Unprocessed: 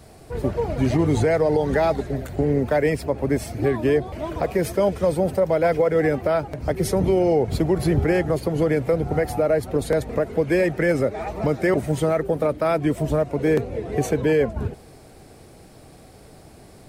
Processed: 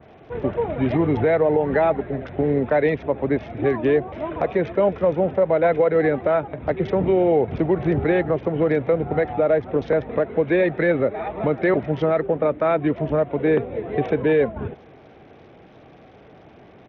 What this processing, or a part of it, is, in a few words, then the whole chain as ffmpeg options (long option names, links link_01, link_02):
Bluetooth headset: -af "adynamicequalizer=threshold=0.00447:dfrequency=3800:dqfactor=1.3:tfrequency=3800:tqfactor=1.3:attack=5:release=100:ratio=0.375:range=3.5:mode=cutabove:tftype=bell,highpass=frequency=190:poles=1,aresample=8000,aresample=44100,volume=2dB" -ar 48000 -c:a sbc -b:a 64k